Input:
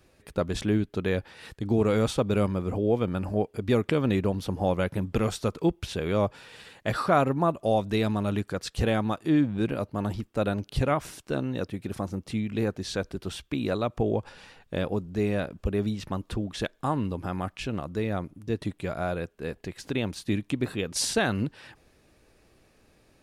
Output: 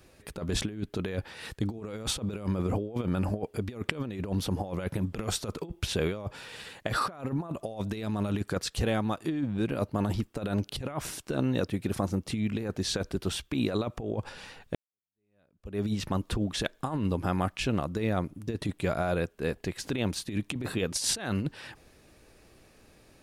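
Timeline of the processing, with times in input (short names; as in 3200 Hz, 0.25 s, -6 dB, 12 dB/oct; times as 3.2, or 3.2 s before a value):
8.61–9.82 compressor 1.5:1, threshold -37 dBFS
14.75–15.87 fade in exponential
whole clip: high shelf 5300 Hz +3 dB; negative-ratio compressor -29 dBFS, ratio -0.5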